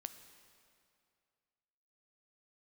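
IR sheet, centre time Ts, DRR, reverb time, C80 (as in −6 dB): 19 ms, 9.5 dB, 2.4 s, 11.5 dB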